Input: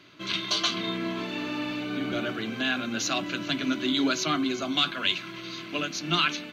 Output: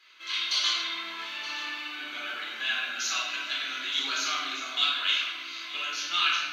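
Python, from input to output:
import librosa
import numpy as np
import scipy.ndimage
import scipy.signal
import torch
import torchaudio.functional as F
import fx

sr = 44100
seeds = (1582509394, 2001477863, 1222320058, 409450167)

p1 = scipy.signal.sosfilt(scipy.signal.butter(2, 1300.0, 'highpass', fs=sr, output='sos'), x)
p2 = p1 + fx.echo_single(p1, sr, ms=923, db=-14.5, dry=0)
p3 = fx.room_shoebox(p2, sr, seeds[0], volume_m3=860.0, walls='mixed', distance_m=4.0)
y = p3 * librosa.db_to_amplitude(-6.5)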